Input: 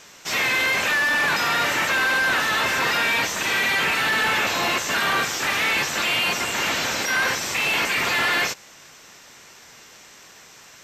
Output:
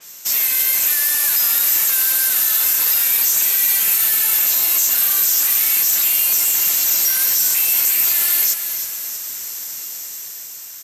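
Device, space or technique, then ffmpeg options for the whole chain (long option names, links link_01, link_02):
FM broadcast chain: -filter_complex "[0:a]highpass=73,dynaudnorm=framelen=250:gausssize=9:maxgain=6dB,acrossover=split=2400|5500[link_01][link_02][link_03];[link_01]acompressor=threshold=-30dB:ratio=4[link_04];[link_02]acompressor=threshold=-32dB:ratio=4[link_05];[link_03]acompressor=threshold=-32dB:ratio=4[link_06];[link_04][link_05][link_06]amix=inputs=3:normalize=0,aemphasis=mode=production:type=50fm,alimiter=limit=-15dB:level=0:latency=1:release=29,asoftclip=type=hard:threshold=-18dB,lowpass=frequency=15000:width=0.5412,lowpass=frequency=15000:width=1.3066,aemphasis=mode=production:type=50fm,asplit=6[link_07][link_08][link_09][link_10][link_11][link_12];[link_08]adelay=316,afreqshift=-39,volume=-9dB[link_13];[link_09]adelay=632,afreqshift=-78,volume=-15.4dB[link_14];[link_10]adelay=948,afreqshift=-117,volume=-21.8dB[link_15];[link_11]adelay=1264,afreqshift=-156,volume=-28.1dB[link_16];[link_12]adelay=1580,afreqshift=-195,volume=-34.5dB[link_17];[link_07][link_13][link_14][link_15][link_16][link_17]amix=inputs=6:normalize=0,adynamicequalizer=threshold=0.0251:dfrequency=4700:dqfactor=0.7:tfrequency=4700:tqfactor=0.7:attack=5:release=100:ratio=0.375:range=1.5:mode=boostabove:tftype=highshelf,volume=-5dB"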